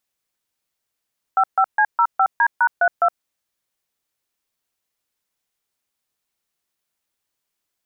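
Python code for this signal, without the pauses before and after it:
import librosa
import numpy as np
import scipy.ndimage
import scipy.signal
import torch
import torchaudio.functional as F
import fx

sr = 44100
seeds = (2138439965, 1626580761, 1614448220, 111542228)

y = fx.dtmf(sr, digits='55C05D#32', tone_ms=67, gap_ms=139, level_db=-15.0)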